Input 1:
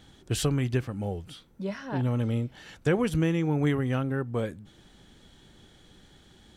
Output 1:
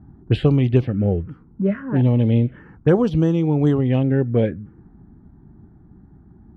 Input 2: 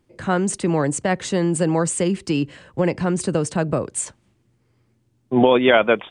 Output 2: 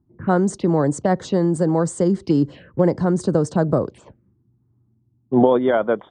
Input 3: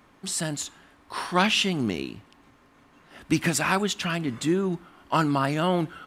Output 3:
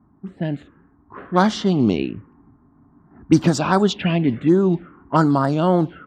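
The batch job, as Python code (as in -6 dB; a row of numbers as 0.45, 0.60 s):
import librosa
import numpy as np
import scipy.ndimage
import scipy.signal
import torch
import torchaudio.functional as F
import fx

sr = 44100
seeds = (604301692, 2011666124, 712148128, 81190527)

y = fx.highpass(x, sr, hz=64.0, slope=6)
y = fx.env_phaser(y, sr, low_hz=500.0, high_hz=2600.0, full_db=-19.5)
y = fx.high_shelf(y, sr, hz=2700.0, db=-9.0)
y = fx.env_lowpass(y, sr, base_hz=480.0, full_db=-21.0)
y = fx.rider(y, sr, range_db=4, speed_s=0.5)
y = y * 10.0 ** (-20 / 20.0) / np.sqrt(np.mean(np.square(y)))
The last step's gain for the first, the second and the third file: +11.5, +2.0, +10.0 dB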